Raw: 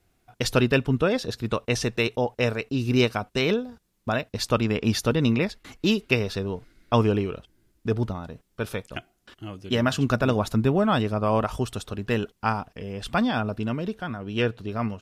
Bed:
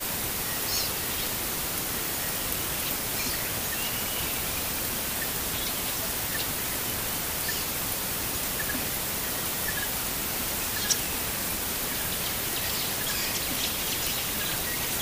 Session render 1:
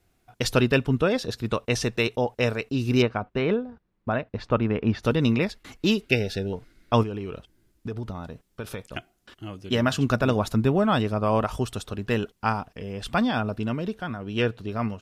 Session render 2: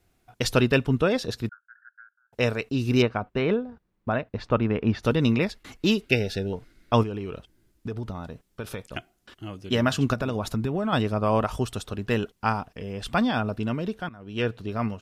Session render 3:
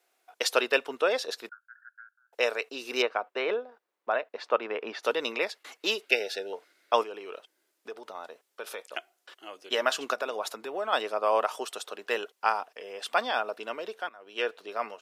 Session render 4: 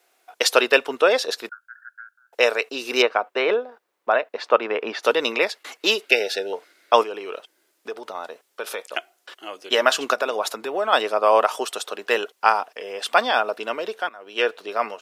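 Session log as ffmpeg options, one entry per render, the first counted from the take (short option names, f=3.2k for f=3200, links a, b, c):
-filter_complex "[0:a]asettb=1/sr,asplit=3[a][b][c];[a]atrim=end=3.024[d];[b]atrim=start=3.02:end=5.03,asetpts=PTS-STARTPTS,afade=t=in:d=0.004:c=qsin,afade=t=out:st=2.006:d=0.004:c=qsin,lowpass=1.9k[e];[c]atrim=start=5.026[f];[d][e]acrossfade=d=0.004:c1=hsin:c2=qsin[g];[g][f]acrossfade=d=0.004:c1=qsin:c2=hsin,asettb=1/sr,asplit=3[h][i][j];[h]atrim=end=6.094[k];[i]atrim=start=6.09:end=6.53,asetpts=PTS-STARTPTS,afade=t=in:d=0.004:c=qsin,afade=t=out:st=0.436:d=0.004:c=qsin,asuperstop=centerf=1100:order=20:qfactor=2.2[l];[j]atrim=start=6.526[m];[k][l]acrossfade=d=0.004:c1=hsin:c2=qsin[n];[n][m]acrossfade=d=0.004:c1=qsin:c2=hsin,asettb=1/sr,asplit=3[o][p][q];[o]atrim=end=7.034[r];[p]atrim=start=7.03:end=8.86,asetpts=PTS-STARTPTS,afade=t=in:d=0.004:c=qsin,afade=t=out:st=1.826:d=0.004:c=qsin,acompressor=threshold=-28dB:ratio=6:attack=3.2:release=140:knee=1:detection=peak[s];[q]atrim=start=8.856[t];[r][s]acrossfade=d=0.004:c1=hsin:c2=qsin[u];[u][t]acrossfade=d=0.004:c1=qsin:c2=hsin"
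-filter_complex "[0:a]asettb=1/sr,asplit=3[a][b][c];[a]atrim=end=1.494[d];[b]atrim=start=1.49:end=2.33,asetpts=PTS-STARTPTS,afade=t=in:d=0.004:c=qsin,afade=t=out:st=0.836:d=0.004:c=qsin,asuperpass=centerf=1500:order=8:qfactor=5.8[e];[c]atrim=start=2.326[f];[d][e]acrossfade=d=0.004:c1=hsin:c2=qsin[g];[g][f]acrossfade=d=0.004:c1=qsin:c2=hsin,asettb=1/sr,asplit=3[h][i][j];[h]atrim=end=10.134[k];[i]atrim=start=10.13:end=10.93,asetpts=PTS-STARTPTS,afade=t=in:d=0.004:c=qsin,afade=t=out:st=0.796:d=0.004:c=qsin,acompressor=threshold=-22dB:ratio=6:attack=3.2:release=140:knee=1:detection=peak[l];[j]atrim=start=10.926[m];[k][l]acrossfade=d=0.004:c1=hsin:c2=qsin[n];[n][m]acrossfade=d=0.004:c1=qsin:c2=hsin,asplit=2[o][p];[o]atrim=end=14.09,asetpts=PTS-STARTPTS,afade=t=out:st=14.086:d=0.004:c=hsin:silence=0.141254[q];[p]atrim=start=14.09,asetpts=PTS-STARTPTS,afade=t=in:d=0.47:silence=0.141254[r];[q][r]concat=n=2:v=0:a=1"
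-af "highpass=f=460:w=0.5412,highpass=f=460:w=1.3066"
-af "volume=8.5dB,alimiter=limit=-1dB:level=0:latency=1"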